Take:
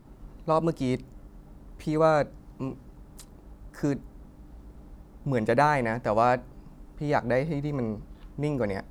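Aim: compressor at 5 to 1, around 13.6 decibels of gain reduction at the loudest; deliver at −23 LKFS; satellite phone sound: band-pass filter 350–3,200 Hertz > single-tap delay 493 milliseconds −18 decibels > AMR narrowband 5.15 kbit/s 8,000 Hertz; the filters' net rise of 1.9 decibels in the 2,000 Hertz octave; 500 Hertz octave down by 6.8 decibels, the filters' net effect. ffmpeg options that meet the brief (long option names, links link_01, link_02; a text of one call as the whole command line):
ffmpeg -i in.wav -af "equalizer=frequency=500:width_type=o:gain=-8,equalizer=frequency=2000:width_type=o:gain=3.5,acompressor=threshold=-35dB:ratio=5,highpass=350,lowpass=3200,aecho=1:1:493:0.126,volume=21dB" -ar 8000 -c:a libopencore_amrnb -b:a 5150 out.amr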